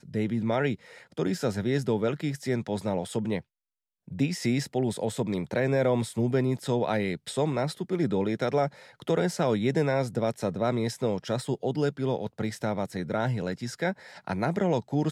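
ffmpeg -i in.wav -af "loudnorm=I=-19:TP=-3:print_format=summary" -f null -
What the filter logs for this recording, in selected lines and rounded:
Input Integrated:    -28.9 LUFS
Input True Peak:     -13.4 dBTP
Input LRA:             2.6 LU
Input Threshold:     -39.0 LUFS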